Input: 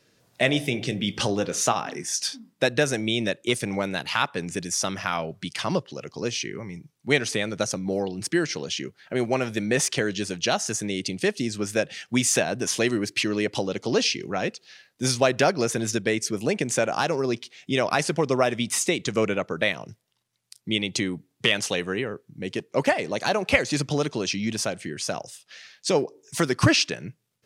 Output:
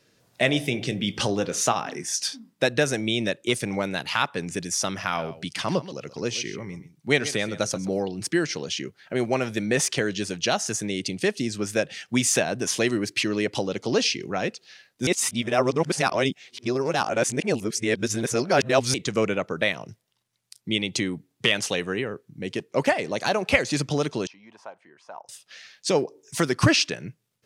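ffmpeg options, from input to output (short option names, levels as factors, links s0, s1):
-filter_complex "[0:a]asettb=1/sr,asplit=3[s0][s1][s2];[s0]atrim=end=5.024[s3];[s1]atrim=start=5.02:end=7.98,asetpts=PTS-STARTPTS,afade=t=in:d=0.004:c=qsin,afade=t=out:st=2.956:d=0.004:c=qsin,aecho=1:1:130:0.178,atrim=end_sample=130536[s4];[s2]atrim=start=7.976[s5];[s3][s4]acrossfade=d=0.004:c1=hsin:c2=qsin[s6];[s6][s5]acrossfade=d=0.004:c1=qsin:c2=hsin,asettb=1/sr,asplit=3[s7][s8][s9];[s7]atrim=end=24.274[s10];[s8]atrim=start=24.27:end=25.29,asetpts=PTS-STARTPTS,afade=t=in:d=0.004:c=qsin,afade=t=out:st=1.016:d=0.004:c=qsin,bandpass=f=930:t=q:w=4.5[s11];[s9]atrim=start=25.286[s12];[s10][s11]acrossfade=d=0.004:c1=hsin:c2=qsin[s13];[s13][s12]acrossfade=d=0.004:c1=qsin:c2=hsin,asplit=3[s14][s15][s16];[s14]atrim=end=15.072[s17];[s15]atrim=start=15.068:end=18.942,asetpts=PTS-STARTPTS,areverse[s18];[s16]atrim=start=18.938[s19];[s17][s18]acrossfade=d=0.004:c1=hsin:c2=hsin[s20];[s20][s19]acrossfade=d=0.004:c1=hsin:c2=hsin"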